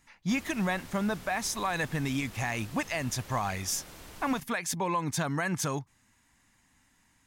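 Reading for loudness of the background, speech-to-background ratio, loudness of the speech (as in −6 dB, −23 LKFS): −48.0 LKFS, 16.5 dB, −31.5 LKFS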